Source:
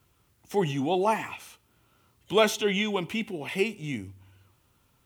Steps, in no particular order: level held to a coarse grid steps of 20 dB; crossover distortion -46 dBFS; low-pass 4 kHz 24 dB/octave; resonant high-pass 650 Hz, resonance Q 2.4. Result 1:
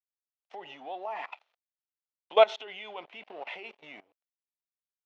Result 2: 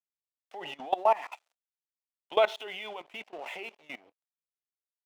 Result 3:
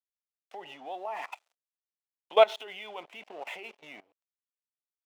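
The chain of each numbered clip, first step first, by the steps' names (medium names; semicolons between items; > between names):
crossover distortion > low-pass > level held to a coarse grid > resonant high-pass; low-pass > crossover distortion > resonant high-pass > level held to a coarse grid; low-pass > crossover distortion > level held to a coarse grid > resonant high-pass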